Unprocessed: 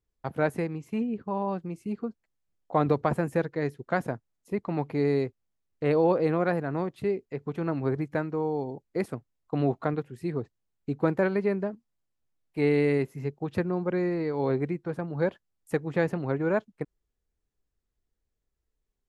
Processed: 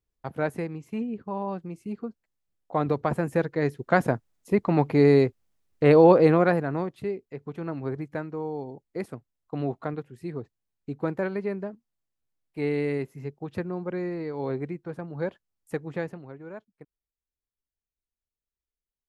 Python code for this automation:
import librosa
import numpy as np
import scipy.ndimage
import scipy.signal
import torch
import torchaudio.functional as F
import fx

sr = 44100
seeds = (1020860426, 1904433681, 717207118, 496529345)

y = fx.gain(x, sr, db=fx.line((2.9, -1.5), (4.13, 7.5), (6.25, 7.5), (7.16, -3.5), (15.93, -3.5), (16.33, -15.0)))